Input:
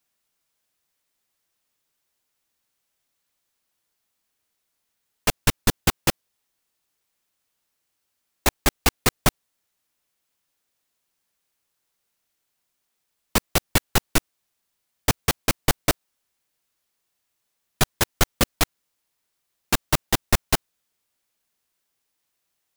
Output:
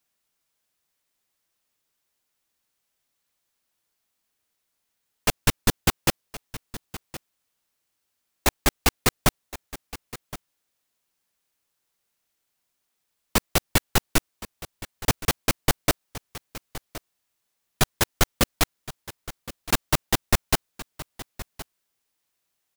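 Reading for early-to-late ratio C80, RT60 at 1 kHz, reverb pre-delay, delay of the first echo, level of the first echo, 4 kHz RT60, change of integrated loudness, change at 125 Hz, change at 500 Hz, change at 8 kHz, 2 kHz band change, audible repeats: no reverb, no reverb, no reverb, 1068 ms, -16.5 dB, no reverb, -1.0 dB, -1.0 dB, -1.0 dB, -1.0 dB, -1.0 dB, 1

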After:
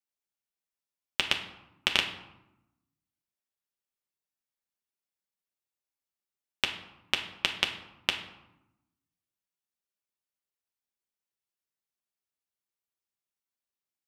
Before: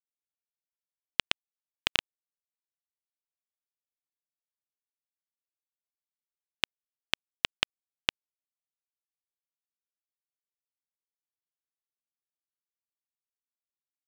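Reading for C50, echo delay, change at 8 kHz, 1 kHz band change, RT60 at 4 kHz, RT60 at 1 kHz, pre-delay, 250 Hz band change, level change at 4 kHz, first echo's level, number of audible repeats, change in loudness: 9.0 dB, no echo, +1.5 dB, +2.0 dB, 0.55 s, 0.95 s, 5 ms, +3.0 dB, +2.0 dB, no echo, no echo, +1.5 dB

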